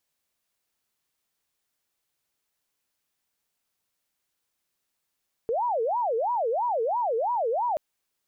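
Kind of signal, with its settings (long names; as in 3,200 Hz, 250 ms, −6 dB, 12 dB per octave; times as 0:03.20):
siren wail 443–981 Hz 3 per second sine −23 dBFS 2.28 s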